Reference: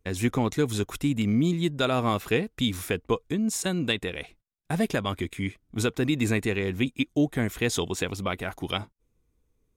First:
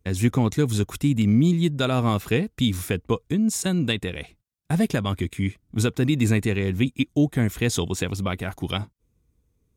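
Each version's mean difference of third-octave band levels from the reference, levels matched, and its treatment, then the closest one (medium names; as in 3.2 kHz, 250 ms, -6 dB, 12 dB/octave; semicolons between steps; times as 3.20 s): 2.5 dB: high-pass 49 Hz; tone controls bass +8 dB, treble +3 dB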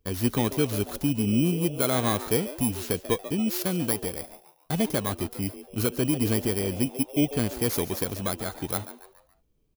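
7.0 dB: bit-reversed sample order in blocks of 16 samples; on a send: frequency-shifting echo 141 ms, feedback 41%, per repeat +140 Hz, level -14 dB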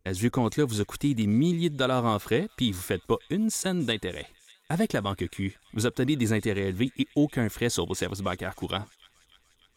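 1.0 dB: dynamic bell 2.5 kHz, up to -8 dB, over -48 dBFS, Q 3.8; feedback echo behind a high-pass 297 ms, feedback 68%, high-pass 1.9 kHz, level -22 dB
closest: third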